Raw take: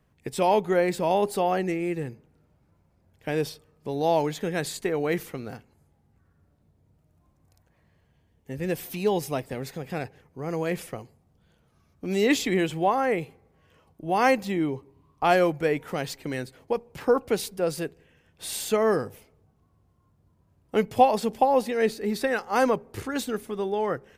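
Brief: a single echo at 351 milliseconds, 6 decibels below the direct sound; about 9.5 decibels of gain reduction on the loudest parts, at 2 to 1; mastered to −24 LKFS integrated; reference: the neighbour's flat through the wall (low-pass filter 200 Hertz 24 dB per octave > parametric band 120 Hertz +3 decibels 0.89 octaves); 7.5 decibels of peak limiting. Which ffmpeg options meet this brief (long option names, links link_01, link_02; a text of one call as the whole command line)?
ffmpeg -i in.wav -af "acompressor=threshold=-30dB:ratio=2,alimiter=limit=-22.5dB:level=0:latency=1,lowpass=frequency=200:width=0.5412,lowpass=frequency=200:width=1.3066,equalizer=frequency=120:width_type=o:width=0.89:gain=3,aecho=1:1:351:0.501,volume=18dB" out.wav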